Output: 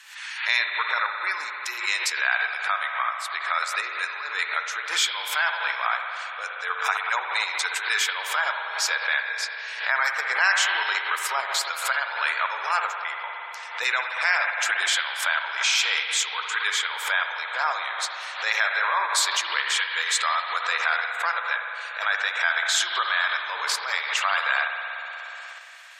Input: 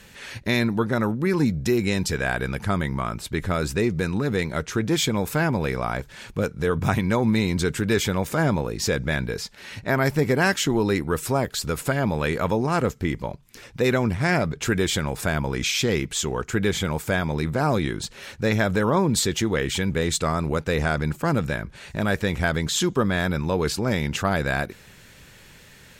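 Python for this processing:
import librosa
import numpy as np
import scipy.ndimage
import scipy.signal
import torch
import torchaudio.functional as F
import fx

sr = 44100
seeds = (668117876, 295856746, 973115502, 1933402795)

p1 = scipy.signal.sosfilt(scipy.signal.butter(4, 1000.0, 'highpass', fs=sr, output='sos'), x)
p2 = fx.rev_spring(p1, sr, rt60_s=3.3, pass_ms=(58,), chirp_ms=30, drr_db=1.0)
p3 = fx.level_steps(p2, sr, step_db=15)
p4 = p2 + (p3 * 10.0 ** (-1.5 / 20.0))
p5 = fx.high_shelf(p4, sr, hz=12000.0, db=-9.5)
p6 = fx.spec_gate(p5, sr, threshold_db=-30, keep='strong')
y = fx.pre_swell(p6, sr, db_per_s=93.0)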